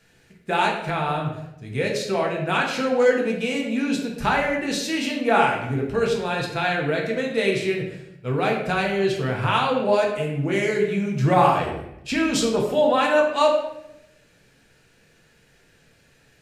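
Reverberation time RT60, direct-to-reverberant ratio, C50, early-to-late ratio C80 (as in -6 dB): 0.85 s, -1.5 dB, 4.5 dB, 7.0 dB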